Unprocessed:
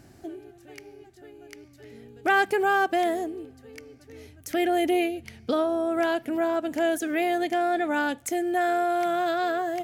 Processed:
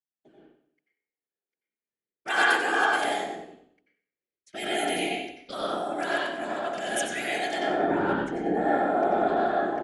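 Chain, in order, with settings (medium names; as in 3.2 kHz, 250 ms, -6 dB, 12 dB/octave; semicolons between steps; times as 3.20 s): steep low-pass 11 kHz 96 dB/octave; gate -39 dBFS, range -31 dB; level-controlled noise filter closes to 3 kHz, open at -19.5 dBFS; tilt EQ +4 dB/octave, from 7.58 s -1.5 dB/octave; whisper effect; feedback delay 93 ms, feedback 43%, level -11 dB; reverberation RT60 0.65 s, pre-delay 82 ms, DRR -4 dB; three bands expanded up and down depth 40%; trim -6.5 dB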